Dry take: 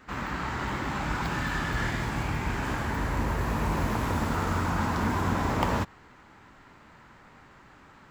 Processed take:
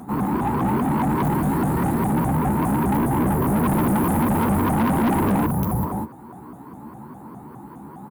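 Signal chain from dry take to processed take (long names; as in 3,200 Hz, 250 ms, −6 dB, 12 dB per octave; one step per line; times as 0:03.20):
double-tracking delay 14 ms −4 dB
on a send: single-tap delay 200 ms −12 dB
on the sum: healed spectral selection 0:05.49–0:05.87, 210–11,000 Hz after
drawn EQ curve 160 Hz 0 dB, 550 Hz −6 dB, 880 Hz −2 dB, 1,800 Hz −17 dB, 3,400 Hz −21 dB, 6,300 Hz −23 dB, 10,000 Hz +9 dB
upward compression, threshold −50 dBFS
high-pass filter 87 Hz 12 dB per octave
high-shelf EQ 6,700 Hz +5.5 dB
hollow resonant body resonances 220/320/860/4,000 Hz, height 11 dB, ringing for 20 ms
soft clipping −23.5 dBFS, distortion −8 dB
pitch modulation by a square or saw wave saw up 4.9 Hz, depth 250 cents
level +7 dB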